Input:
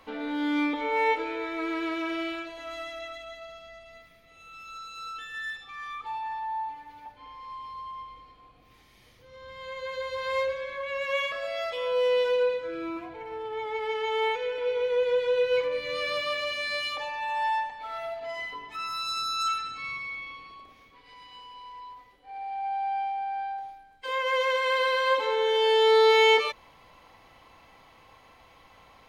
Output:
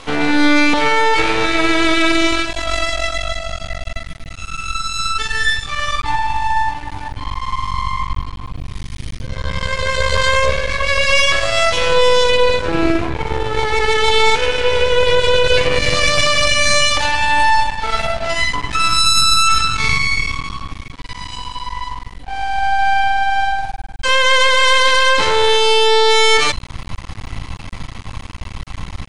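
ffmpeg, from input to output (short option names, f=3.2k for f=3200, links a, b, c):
-af "aemphasis=mode=production:type=cd,bandreject=f=371.9:t=h:w=4,bandreject=f=743.8:t=h:w=4,bandreject=f=1.1157k:t=h:w=4,bandreject=f=1.4876k:t=h:w=4,bandreject=f=1.8595k:t=h:w=4,bandreject=f=2.2314k:t=h:w=4,bandreject=f=2.6033k:t=h:w=4,bandreject=f=2.9752k:t=h:w=4,bandreject=f=3.3471k:t=h:w=4,bandreject=f=3.719k:t=h:w=4,bandreject=f=4.0909k:t=h:w=4,bandreject=f=4.4628k:t=h:w=4,bandreject=f=4.8347k:t=h:w=4,bandreject=f=5.2066k:t=h:w=4,bandreject=f=5.5785k:t=h:w=4,bandreject=f=5.9504k:t=h:w=4,bandreject=f=6.3223k:t=h:w=4,bandreject=f=6.6942k:t=h:w=4,bandreject=f=7.0661k:t=h:w=4,bandreject=f=7.438k:t=h:w=4,bandreject=f=7.8099k:t=h:w=4,bandreject=f=8.1818k:t=h:w=4,bandreject=f=8.5537k:t=h:w=4,bandreject=f=8.9256k:t=h:w=4,bandreject=f=9.2975k:t=h:w=4,bandreject=f=9.6694k:t=h:w=4,bandreject=f=10.0413k:t=h:w=4,asubboost=boost=12:cutoff=140,aeval=exprs='max(val(0),0)':c=same,aresample=22050,aresample=44100,alimiter=level_in=23.5dB:limit=-1dB:release=50:level=0:latency=1,volume=-1dB"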